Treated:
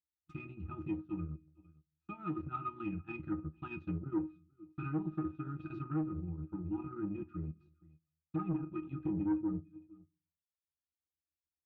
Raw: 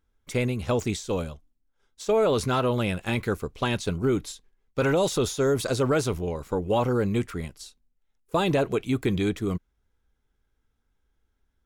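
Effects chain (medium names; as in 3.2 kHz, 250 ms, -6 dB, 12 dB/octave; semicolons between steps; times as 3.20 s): tracing distortion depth 0.058 ms; pitch-class resonator D#, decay 0.2 s; gate with hold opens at -52 dBFS; Chebyshev band-stop 340–800 Hz, order 3; treble shelf 2.2 kHz -10 dB; delay 457 ms -23.5 dB; saturation -34 dBFS, distortion -11 dB; low-pass that closes with the level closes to 1.2 kHz, closed at -38 dBFS; high-pass 230 Hz 6 dB/octave; peaking EQ 630 Hz -10 dB 0.72 oct; simulated room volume 140 m³, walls furnished, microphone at 0.55 m; transient shaper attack +2 dB, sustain -8 dB; trim +7.5 dB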